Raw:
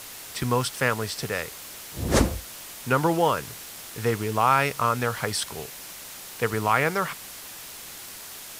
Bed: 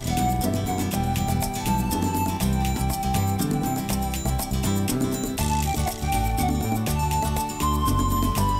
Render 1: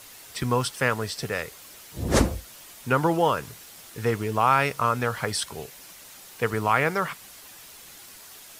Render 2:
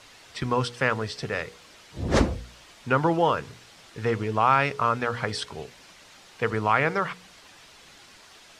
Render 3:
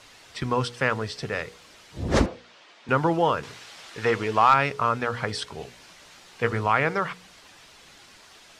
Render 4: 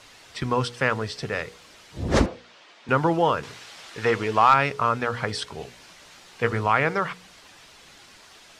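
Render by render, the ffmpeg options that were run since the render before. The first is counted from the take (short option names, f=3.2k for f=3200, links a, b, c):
-af "afftdn=nr=7:nf=-41"
-af "lowpass=4.9k,bandreject=f=60.19:t=h:w=4,bandreject=f=120.38:t=h:w=4,bandreject=f=180.57:t=h:w=4,bandreject=f=240.76:t=h:w=4,bandreject=f=300.95:t=h:w=4,bandreject=f=361.14:t=h:w=4,bandreject=f=421.33:t=h:w=4,bandreject=f=481.52:t=h:w=4"
-filter_complex "[0:a]asettb=1/sr,asplit=3[a][b][c];[a]atrim=end=2.264[d];[b]atrim=start=2.26:end=2.89,asetpts=PTS-STARTPTS,afade=t=in:d=0.004:c=qsin,afade=t=out:st=0.626:d=0.004:c=qsin,highpass=320,lowpass=4.3k[e];[c]atrim=start=2.886[f];[d][e]acrossfade=d=0.004:c1=hsin:c2=qsin[g];[g][f]acrossfade=d=0.004:c1=qsin:c2=hsin,asettb=1/sr,asplit=3[h][i][j];[h]atrim=end=3.434[k];[i]atrim=start=3.43:end=4.54,asetpts=PTS-STARTPTS,afade=t=in:d=0.004:c=qsin,afade=t=out:st=1.106:d=0.004:c=qsin,asplit=2[l][m];[m]highpass=f=720:p=1,volume=12dB,asoftclip=type=tanh:threshold=-6dB[n];[l][n]amix=inputs=2:normalize=0,lowpass=f=7k:p=1,volume=-6dB[o];[j]atrim=start=4.536[p];[k][o]acrossfade=d=0.004:c1=hsin:c2=qsin[q];[q][p]acrossfade=d=0.004:c1=qsin:c2=hsin,asettb=1/sr,asplit=3[r][s][t];[r]atrim=end=5.594[u];[s]atrim=start=5.59:end=6.66,asetpts=PTS-STARTPTS,afade=t=in:d=0.004:c=qsin,afade=t=out:st=1.066:d=0.004:c=qsin,asplit=2[v][w];[w]adelay=17,volume=-5.5dB[x];[v][x]amix=inputs=2:normalize=0,atrim=end_sample=47187[y];[t]atrim=start=6.656[z];[u][y]acrossfade=d=0.004:c1=hsin:c2=qsin[aa];[aa][z]acrossfade=d=0.004:c1=qsin:c2=hsin"
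-af "volume=1dB"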